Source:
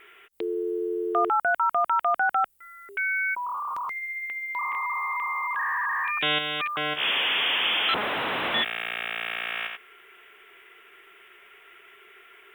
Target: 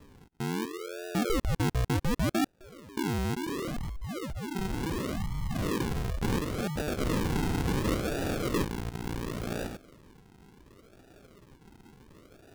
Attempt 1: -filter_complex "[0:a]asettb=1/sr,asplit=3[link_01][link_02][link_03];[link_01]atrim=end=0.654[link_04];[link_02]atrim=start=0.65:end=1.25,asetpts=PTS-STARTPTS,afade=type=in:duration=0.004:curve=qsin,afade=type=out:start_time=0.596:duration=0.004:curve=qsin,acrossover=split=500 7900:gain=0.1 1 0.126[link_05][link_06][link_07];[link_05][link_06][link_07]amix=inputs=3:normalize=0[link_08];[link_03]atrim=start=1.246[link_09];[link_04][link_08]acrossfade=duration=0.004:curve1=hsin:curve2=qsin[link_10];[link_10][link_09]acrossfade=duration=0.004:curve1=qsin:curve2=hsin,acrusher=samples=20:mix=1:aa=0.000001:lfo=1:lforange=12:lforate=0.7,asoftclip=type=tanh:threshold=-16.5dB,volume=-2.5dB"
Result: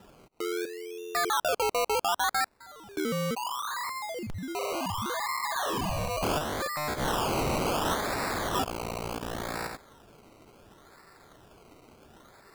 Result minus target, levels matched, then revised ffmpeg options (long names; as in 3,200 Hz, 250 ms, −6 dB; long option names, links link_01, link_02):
sample-and-hold swept by an LFO: distortion −21 dB
-filter_complex "[0:a]asettb=1/sr,asplit=3[link_01][link_02][link_03];[link_01]atrim=end=0.654[link_04];[link_02]atrim=start=0.65:end=1.25,asetpts=PTS-STARTPTS,afade=type=in:duration=0.004:curve=qsin,afade=type=out:start_time=0.596:duration=0.004:curve=qsin,acrossover=split=500 7900:gain=0.1 1 0.126[link_05][link_06][link_07];[link_05][link_06][link_07]amix=inputs=3:normalize=0[link_08];[link_03]atrim=start=1.246[link_09];[link_04][link_08]acrossfade=duration=0.004:curve1=hsin:curve2=qsin[link_10];[link_10][link_09]acrossfade=duration=0.004:curve1=qsin:curve2=hsin,acrusher=samples=59:mix=1:aa=0.000001:lfo=1:lforange=35.4:lforate=0.7,asoftclip=type=tanh:threshold=-16.5dB,volume=-2.5dB"